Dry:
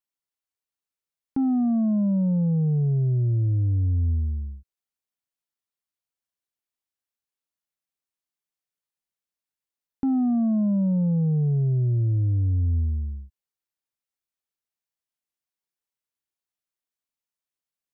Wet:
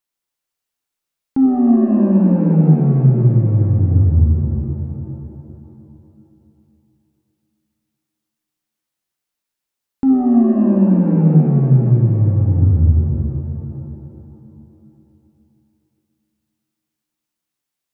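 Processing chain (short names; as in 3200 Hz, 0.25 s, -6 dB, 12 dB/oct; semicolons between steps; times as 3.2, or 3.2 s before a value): shimmer reverb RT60 2.9 s, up +7 st, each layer -8 dB, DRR 0.5 dB; gain +6.5 dB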